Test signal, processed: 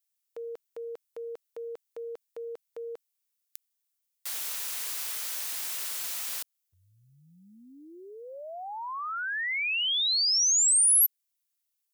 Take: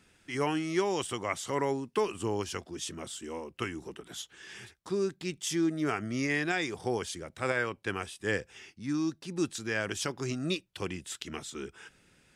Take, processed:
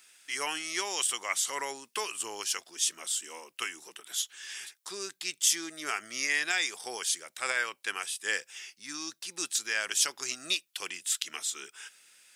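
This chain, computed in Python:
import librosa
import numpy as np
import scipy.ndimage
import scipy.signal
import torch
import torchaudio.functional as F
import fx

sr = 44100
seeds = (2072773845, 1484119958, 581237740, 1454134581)

y = fx.highpass(x, sr, hz=760.0, slope=6)
y = fx.tilt_eq(y, sr, slope=4.0)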